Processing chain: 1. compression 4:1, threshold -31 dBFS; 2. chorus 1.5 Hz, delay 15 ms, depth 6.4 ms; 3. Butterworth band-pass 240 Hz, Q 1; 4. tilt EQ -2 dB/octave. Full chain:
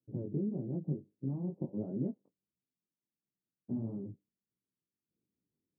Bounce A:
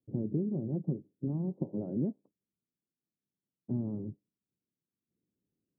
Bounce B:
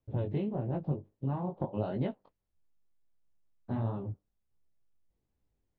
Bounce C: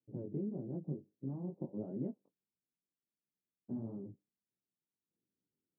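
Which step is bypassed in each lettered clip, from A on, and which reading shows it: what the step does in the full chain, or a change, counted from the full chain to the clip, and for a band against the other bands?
2, momentary loudness spread change +3 LU; 3, 1 kHz band +14.5 dB; 4, 1 kHz band +3.5 dB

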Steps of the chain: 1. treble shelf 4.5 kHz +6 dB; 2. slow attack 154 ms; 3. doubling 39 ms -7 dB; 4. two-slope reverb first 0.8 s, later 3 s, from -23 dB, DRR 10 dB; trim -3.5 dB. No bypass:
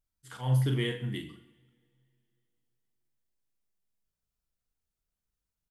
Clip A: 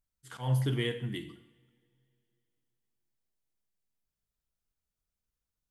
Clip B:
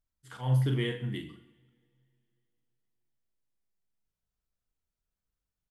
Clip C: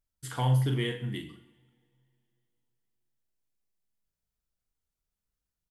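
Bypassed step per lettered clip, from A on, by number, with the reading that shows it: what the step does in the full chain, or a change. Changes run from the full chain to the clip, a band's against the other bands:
3, 125 Hz band -2.0 dB; 1, 4 kHz band -2.0 dB; 2, 1 kHz band +6.5 dB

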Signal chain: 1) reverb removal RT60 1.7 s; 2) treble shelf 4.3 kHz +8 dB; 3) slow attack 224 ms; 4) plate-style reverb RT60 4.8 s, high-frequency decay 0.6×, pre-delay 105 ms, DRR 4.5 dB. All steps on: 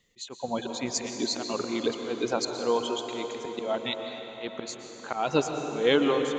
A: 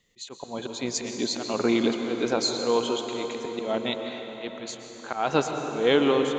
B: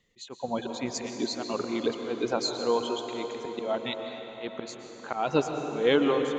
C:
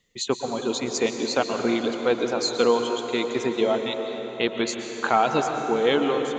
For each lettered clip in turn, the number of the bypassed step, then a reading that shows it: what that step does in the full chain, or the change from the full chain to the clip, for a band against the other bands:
1, loudness change +2.5 LU; 2, 8 kHz band -4.5 dB; 3, crest factor change -3.0 dB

